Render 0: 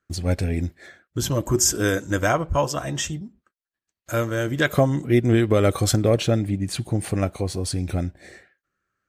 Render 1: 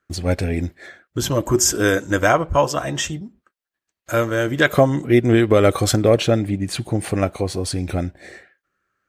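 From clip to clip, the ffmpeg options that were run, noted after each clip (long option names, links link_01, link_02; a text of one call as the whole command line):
ffmpeg -i in.wav -af "bass=frequency=250:gain=-5,treble=frequency=4000:gain=-4,volume=5.5dB" out.wav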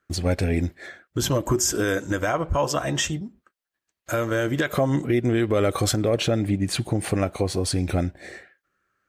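ffmpeg -i in.wav -af "alimiter=limit=-12.5dB:level=0:latency=1:release=133" out.wav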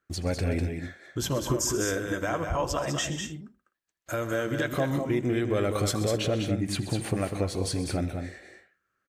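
ffmpeg -i in.wav -af "aecho=1:1:80|129|199|218|253:0.106|0.188|0.501|0.133|0.119,volume=-6dB" out.wav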